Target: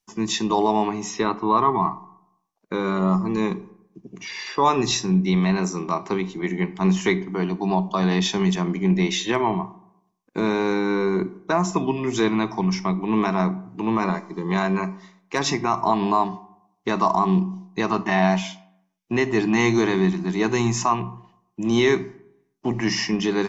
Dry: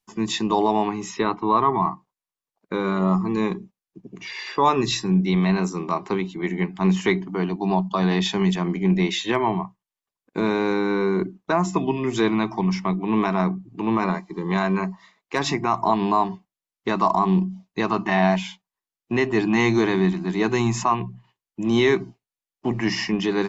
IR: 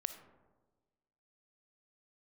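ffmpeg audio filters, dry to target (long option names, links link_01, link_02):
-filter_complex "[0:a]asplit=2[link_01][link_02];[link_02]equalizer=frequency=5900:width_type=o:width=0.47:gain=12.5[link_03];[1:a]atrim=start_sample=2205,asetrate=79380,aresample=44100[link_04];[link_03][link_04]afir=irnorm=-1:irlink=0,volume=3dB[link_05];[link_01][link_05]amix=inputs=2:normalize=0,volume=-4.5dB"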